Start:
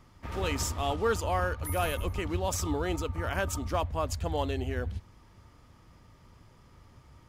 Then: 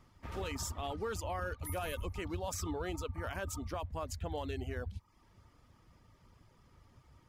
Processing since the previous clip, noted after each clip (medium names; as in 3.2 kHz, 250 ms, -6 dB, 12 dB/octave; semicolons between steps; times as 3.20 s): reverb removal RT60 0.54 s; peak limiter -23.5 dBFS, peak gain reduction 6.5 dB; trim -5.5 dB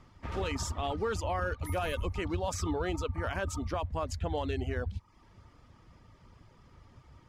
distance through air 53 m; trim +6 dB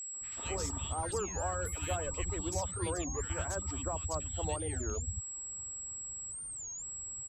whistle 7.7 kHz -37 dBFS; three bands offset in time highs, mids, lows 140/210 ms, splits 250/1700 Hz; warped record 33 1/3 rpm, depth 250 cents; trim -3 dB